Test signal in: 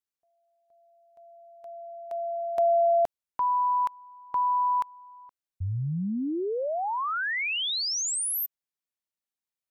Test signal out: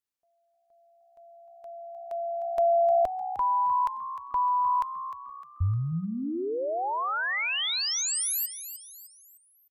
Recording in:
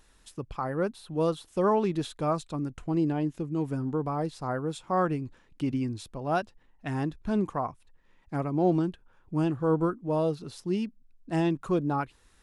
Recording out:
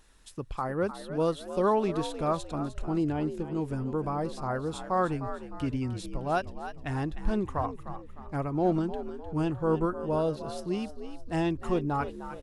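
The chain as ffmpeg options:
-filter_complex "[0:a]asubboost=boost=6.5:cutoff=69,asplit=5[s0][s1][s2][s3][s4];[s1]adelay=305,afreqshift=64,volume=0.266[s5];[s2]adelay=610,afreqshift=128,volume=0.112[s6];[s3]adelay=915,afreqshift=192,volume=0.0468[s7];[s4]adelay=1220,afreqshift=256,volume=0.0197[s8];[s0][s5][s6][s7][s8]amix=inputs=5:normalize=0"

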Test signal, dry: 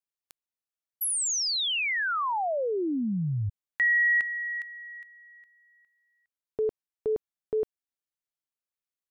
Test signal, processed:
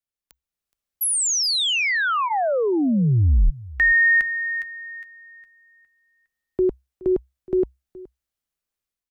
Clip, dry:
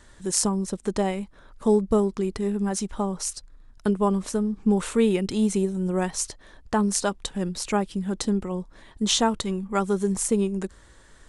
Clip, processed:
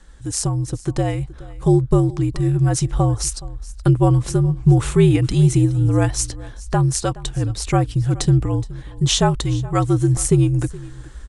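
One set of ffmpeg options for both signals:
-af "lowshelf=f=160:g=11,bandreject=f=1000:w=17,dynaudnorm=f=340:g=3:m=2.37,afreqshift=-65,aecho=1:1:421:0.1,volume=0.891"

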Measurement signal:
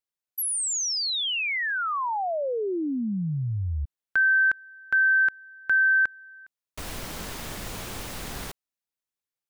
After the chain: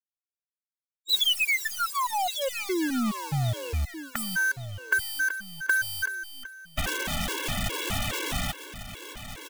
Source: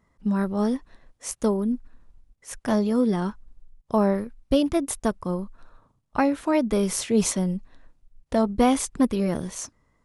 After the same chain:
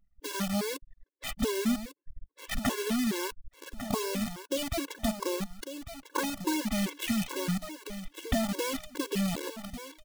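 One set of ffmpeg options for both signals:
-af "aresample=8000,aresample=44100,alimiter=limit=0.126:level=0:latency=1:release=95,acompressor=threshold=0.02:ratio=16:attack=17:release=944:knee=1:detection=peak,acrusher=bits=8:dc=4:mix=0:aa=0.000001,acontrast=90,highshelf=f=2300:g=10,anlmdn=0.0631,lowshelf=f=430:g=2.5,aecho=1:1:1149|2298|3447:0.282|0.0817|0.0237,afftfilt=real='re*gt(sin(2*PI*2.4*pts/sr)*(1-2*mod(floor(b*sr/1024/290),2)),0)':imag='im*gt(sin(2*PI*2.4*pts/sr)*(1-2*mod(floor(b*sr/1024/290),2)),0)':win_size=1024:overlap=0.75,volume=1.19"

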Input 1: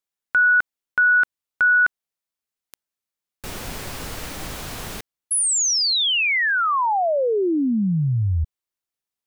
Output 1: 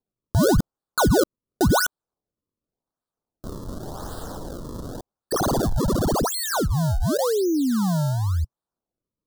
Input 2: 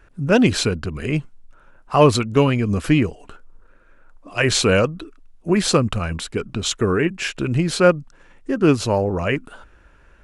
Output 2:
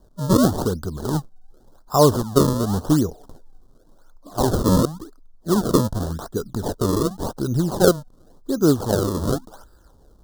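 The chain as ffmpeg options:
-af "adynamicequalizer=threshold=0.02:dfrequency=120:dqfactor=3.4:tfrequency=120:tqfactor=3.4:attack=5:release=100:ratio=0.375:range=2:mode=cutabove:tftype=bell,acrusher=samples=33:mix=1:aa=0.000001:lfo=1:lforange=52.8:lforate=0.9,asuperstop=centerf=2300:order=4:qfactor=0.87,volume=0.891"

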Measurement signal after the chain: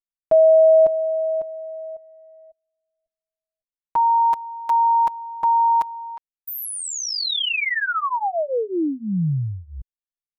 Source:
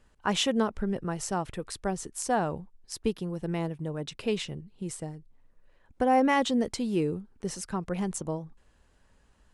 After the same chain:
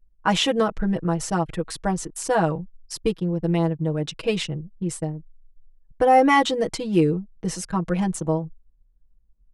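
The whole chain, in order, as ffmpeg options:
-filter_complex "[0:a]anlmdn=0.0631,aecho=1:1:6.2:0.93,acrossover=split=4200[s0][s1];[s1]acompressor=threshold=0.0251:ratio=4:attack=1:release=60[s2];[s0][s2]amix=inputs=2:normalize=0,volume=1.68"

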